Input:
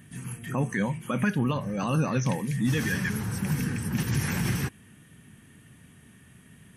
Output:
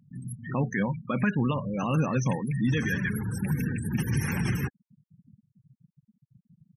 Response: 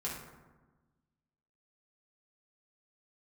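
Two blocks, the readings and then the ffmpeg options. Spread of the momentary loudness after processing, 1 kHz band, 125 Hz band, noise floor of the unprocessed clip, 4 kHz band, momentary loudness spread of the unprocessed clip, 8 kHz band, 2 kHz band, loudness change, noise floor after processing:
5 LU, −0.5 dB, 0.0 dB, −55 dBFS, −4.5 dB, 5 LU, −5.0 dB, −0.5 dB, 0.0 dB, below −85 dBFS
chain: -af "afftfilt=real='re*gte(hypot(re,im),0.0224)':imag='im*gte(hypot(re,im),0.0224)':win_size=1024:overlap=0.75"

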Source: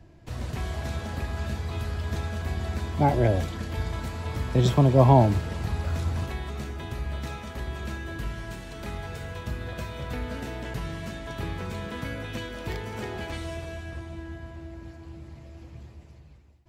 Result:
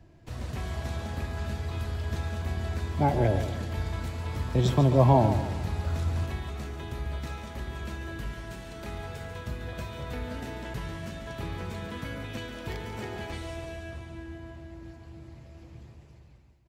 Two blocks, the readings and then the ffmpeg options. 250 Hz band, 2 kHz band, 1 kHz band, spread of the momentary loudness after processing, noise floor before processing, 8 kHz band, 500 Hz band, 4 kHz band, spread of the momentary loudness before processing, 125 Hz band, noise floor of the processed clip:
−2.5 dB, −3.0 dB, −2.5 dB, 18 LU, −49 dBFS, −2.5 dB, −2.5 dB, −2.5 dB, 18 LU, −2.5 dB, −52 dBFS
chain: -af "aecho=1:1:142|284|426|568|710:0.316|0.142|0.064|0.0288|0.013,volume=-3dB"

